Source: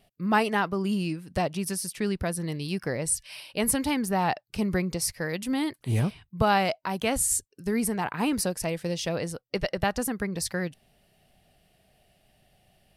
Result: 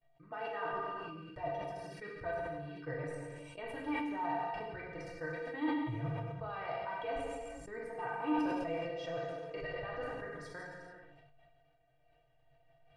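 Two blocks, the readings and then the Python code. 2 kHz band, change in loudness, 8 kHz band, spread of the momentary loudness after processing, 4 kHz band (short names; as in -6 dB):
-10.5 dB, -12.0 dB, -33.5 dB, 11 LU, -18.0 dB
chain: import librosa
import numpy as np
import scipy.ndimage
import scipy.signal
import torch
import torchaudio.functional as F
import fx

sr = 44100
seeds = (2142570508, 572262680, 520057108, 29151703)

y = scipy.signal.sosfilt(scipy.signal.butter(2, 1600.0, 'lowpass', fs=sr, output='sos'), x)
y = fx.peak_eq(y, sr, hz=210.0, db=-14.5, octaves=1.1)
y = fx.level_steps(y, sr, step_db=17)
y = fx.stiff_resonator(y, sr, f0_hz=140.0, decay_s=0.2, stiffness=0.03)
y = y + 10.0 ** (-15.0 / 20.0) * np.pad(y, (int(99 * sr / 1000.0), 0))[:len(y)]
y = fx.rev_gated(y, sr, seeds[0], gate_ms=480, shape='falling', drr_db=-3.0)
y = fx.sustainer(y, sr, db_per_s=25.0)
y = y * librosa.db_to_amplitude(2.5)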